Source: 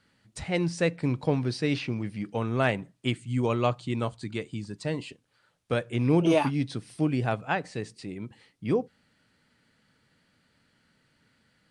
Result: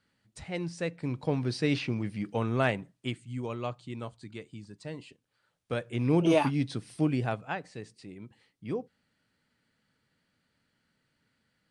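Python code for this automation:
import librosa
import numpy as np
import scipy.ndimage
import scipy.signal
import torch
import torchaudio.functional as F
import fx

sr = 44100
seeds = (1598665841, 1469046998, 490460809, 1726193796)

y = fx.gain(x, sr, db=fx.line((0.93, -7.5), (1.62, -0.5), (2.5, -0.5), (3.45, -9.5), (5.08, -9.5), (6.36, -1.0), (7.1, -1.0), (7.62, -8.0)))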